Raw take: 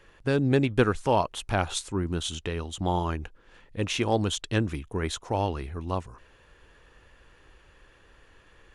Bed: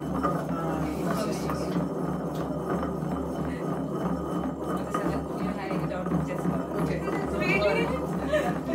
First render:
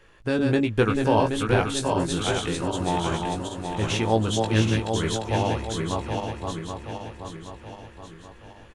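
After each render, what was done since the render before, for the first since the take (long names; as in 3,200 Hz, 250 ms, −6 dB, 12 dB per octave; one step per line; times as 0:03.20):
feedback delay that plays each chunk backwards 388 ms, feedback 70%, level −3.5 dB
double-tracking delay 18 ms −5 dB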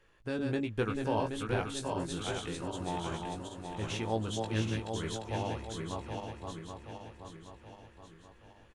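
level −11 dB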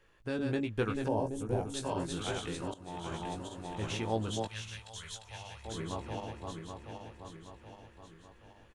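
0:01.08–0:01.74: flat-topped bell 2,300 Hz −15.5 dB 2.3 octaves
0:02.74–0:03.24: fade in, from −19.5 dB
0:04.47–0:05.65: guitar amp tone stack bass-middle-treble 10-0-10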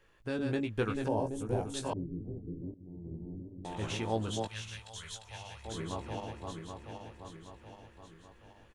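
0:01.93–0:03.65: inverse Chebyshev low-pass filter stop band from 2,000 Hz, stop band 80 dB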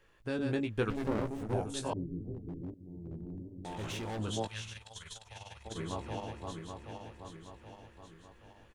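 0:00.90–0:01.54: windowed peak hold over 33 samples
0:02.34–0:04.19: hard clipping −36 dBFS
0:04.72–0:05.76: amplitude modulation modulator 20 Hz, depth 50%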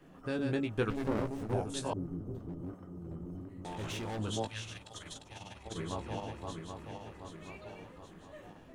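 mix in bed −26.5 dB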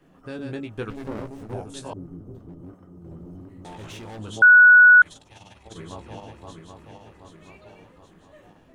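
0:03.04–0:03.77: leveller curve on the samples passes 1
0:04.42–0:05.02: beep over 1,470 Hz −7.5 dBFS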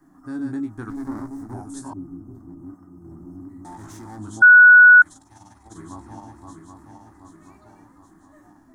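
harmonic and percussive parts rebalanced percussive −5 dB
drawn EQ curve 120 Hz 0 dB, 170 Hz −3 dB, 300 Hz +10 dB, 490 Hz −15 dB, 750 Hz +3 dB, 1,100 Hz +5 dB, 1,900 Hz 0 dB, 2,700 Hz −19 dB, 5,200 Hz +2 dB, 7,700 Hz +7 dB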